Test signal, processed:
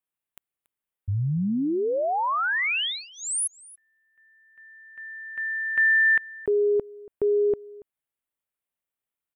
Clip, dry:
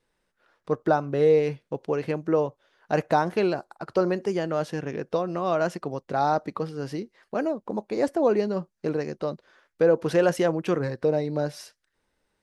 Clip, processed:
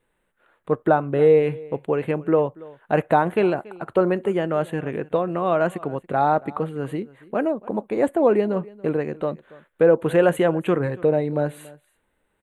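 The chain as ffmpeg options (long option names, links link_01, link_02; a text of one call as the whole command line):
ffmpeg -i in.wav -filter_complex "[0:a]asuperstop=centerf=5300:order=4:qfactor=1.1,asplit=2[link_01][link_02];[link_02]aecho=0:1:282:0.0841[link_03];[link_01][link_03]amix=inputs=2:normalize=0,volume=4dB" out.wav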